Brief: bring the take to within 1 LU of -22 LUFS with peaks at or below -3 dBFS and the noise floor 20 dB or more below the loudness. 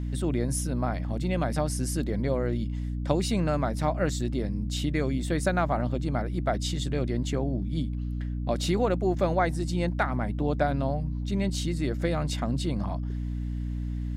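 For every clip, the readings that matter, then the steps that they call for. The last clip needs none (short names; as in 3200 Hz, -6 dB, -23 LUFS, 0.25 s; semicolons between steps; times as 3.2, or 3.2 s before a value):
hum 60 Hz; harmonics up to 300 Hz; hum level -28 dBFS; loudness -28.5 LUFS; peak -10.0 dBFS; loudness target -22.0 LUFS
-> de-hum 60 Hz, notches 5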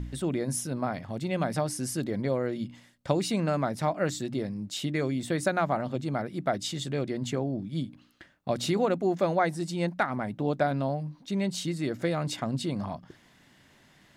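hum none; loudness -30.0 LUFS; peak -10.0 dBFS; loudness target -22.0 LUFS
-> gain +8 dB; limiter -3 dBFS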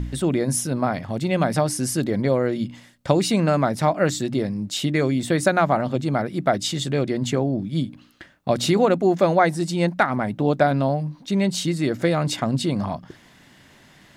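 loudness -22.0 LUFS; peak -3.0 dBFS; noise floor -52 dBFS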